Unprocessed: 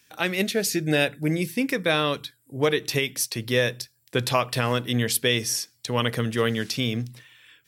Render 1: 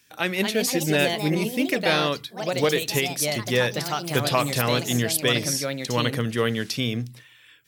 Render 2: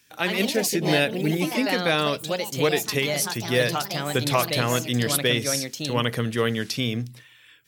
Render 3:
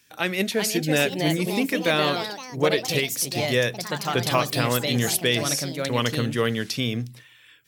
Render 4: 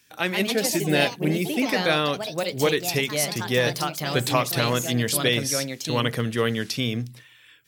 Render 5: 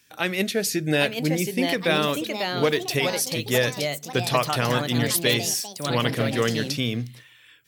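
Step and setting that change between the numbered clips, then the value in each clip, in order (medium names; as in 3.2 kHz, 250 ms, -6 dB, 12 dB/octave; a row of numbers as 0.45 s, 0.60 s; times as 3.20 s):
ever faster or slower copies, time: 269 ms, 100 ms, 424 ms, 171 ms, 842 ms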